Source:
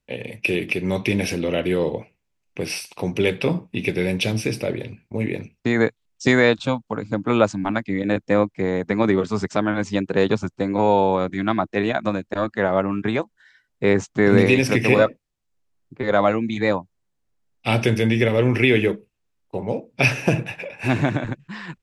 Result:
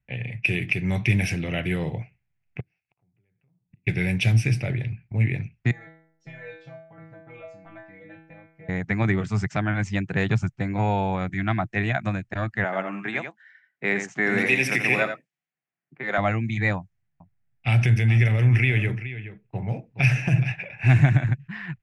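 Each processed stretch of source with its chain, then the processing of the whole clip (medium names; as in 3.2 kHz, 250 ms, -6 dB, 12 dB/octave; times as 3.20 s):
2.60–3.87 s: low-pass 1.1 kHz 6 dB/octave + compression 3:1, threshold -33 dBFS + inverted gate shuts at -37 dBFS, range -35 dB
5.71–8.69 s: peaking EQ 600 Hz +14 dB 0.63 oct + compression 3:1, threshold -16 dBFS + inharmonic resonator 160 Hz, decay 0.7 s, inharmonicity 0.002
12.64–16.18 s: Bessel high-pass 290 Hz, order 8 + delay 85 ms -7.5 dB
16.78–20.52 s: compression 2:1, threshold -20 dBFS + delay 421 ms -13 dB
whole clip: peaking EQ 730 Hz +7.5 dB 0.45 oct; level-controlled noise filter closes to 2.5 kHz, open at -15.5 dBFS; ten-band graphic EQ 125 Hz +12 dB, 250 Hz -7 dB, 500 Hz -11 dB, 1 kHz -8 dB, 2 kHz +7 dB, 4 kHz -8 dB; trim -1 dB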